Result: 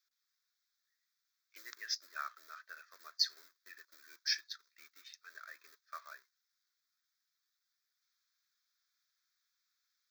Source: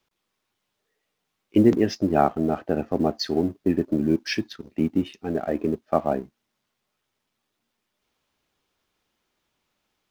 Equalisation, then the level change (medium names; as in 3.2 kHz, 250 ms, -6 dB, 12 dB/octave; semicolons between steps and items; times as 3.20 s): high-pass 1.5 kHz 24 dB/octave; peaking EQ 2.2 kHz -9 dB 0.93 oct; static phaser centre 2.9 kHz, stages 6; 0.0 dB